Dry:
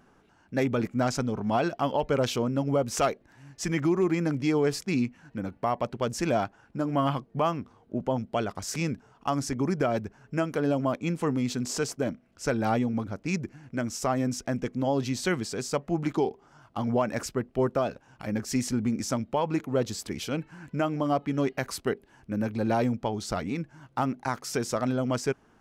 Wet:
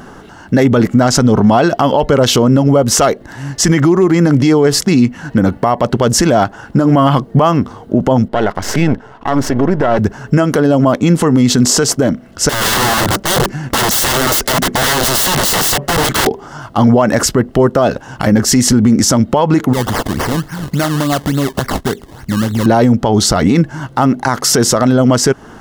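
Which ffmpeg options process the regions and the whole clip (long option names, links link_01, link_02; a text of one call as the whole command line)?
ffmpeg -i in.wav -filter_complex "[0:a]asettb=1/sr,asplit=3[link_01][link_02][link_03];[link_01]atrim=end=8.284[link_04];[link_02]atrim=start=8.28:end=9.99,asetpts=PTS-STARTPTS,afade=type=in:duration=0.004:curve=qsin,afade=type=out:start_time=1.706:duration=0.004:curve=qsin,aeval=exprs='if(lt(val(0),0),0.251*val(0),val(0))':channel_layout=same,bass=frequency=250:gain=-4,treble=frequency=4000:gain=-13,bandreject=frequency=1200:width=9.9[link_05];[link_03]atrim=start=9.986[link_06];[link_04][link_05]acrossfade=duration=0.004:curve1=hsin:curve2=qsin[link_07];[link_07][link_06]acrossfade=duration=0.004:curve1=qsin:curve2=hsin,asettb=1/sr,asplit=3[link_08][link_09][link_10];[link_08]atrim=end=12.494[link_11];[link_09]atrim=start=12.49:end=16.27,asetpts=PTS-STARTPTS,afade=type=in:duration=0.004:curve=qsin,afade=type=out:start_time=3.776:duration=0.004:curve=qsin,aecho=1:1:5.2:0.41,atrim=end_sample=166698,acompressor=threshold=-29dB:ratio=16:attack=3.2:release=140:knee=1:detection=peak,aeval=exprs='(mod(50.1*val(0)+1,2)-1)/50.1':channel_layout=same[link_12];[link_10]atrim=start=16.266[link_13];[link_11][link_12]acrossfade=duration=0.004:curve1=hsin:curve2=qsin[link_14];[link_14][link_13]acrossfade=duration=0.004:curve1=qsin:curve2=hsin,asettb=1/sr,asplit=3[link_15][link_16][link_17];[link_15]atrim=end=19.734[link_18];[link_16]atrim=start=19.73:end=22.66,asetpts=PTS-STARTPTS,afade=type=in:duration=0.004:curve=qsin,afade=type=out:start_time=2.926:duration=0.004:curve=qsin,equalizer=frequency=510:width_type=o:width=2.5:gain=-8,acompressor=threshold=-40dB:ratio=2.5:attack=3.2:release=140:knee=1:detection=peak,acrusher=samples=22:mix=1:aa=0.000001:lfo=1:lforange=22:lforate=3.5[link_19];[link_17]atrim=start=22.656[link_20];[link_18][link_19]acrossfade=duration=0.004:curve1=hsin:curve2=qsin[link_21];[link_21][link_20]acrossfade=duration=0.004:curve1=qsin:curve2=hsin,bandreject=frequency=2400:width=5.7,acompressor=threshold=-29dB:ratio=6,alimiter=level_in=27dB:limit=-1dB:release=50:level=0:latency=1,volume=-1dB" out.wav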